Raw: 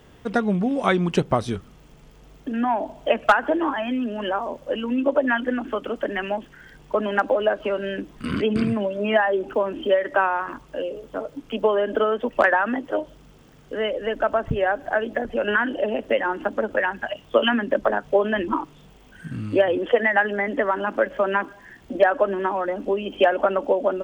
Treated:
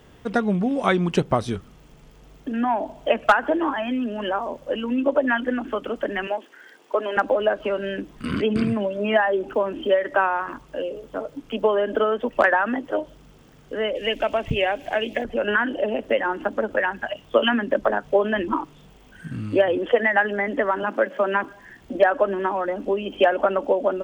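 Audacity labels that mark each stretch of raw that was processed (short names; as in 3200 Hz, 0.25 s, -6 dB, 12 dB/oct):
6.270000	7.170000	HPF 310 Hz 24 dB/oct
13.950000	15.240000	resonant high shelf 1900 Hz +7.5 dB, Q 3
20.830000	21.440000	steep high-pass 170 Hz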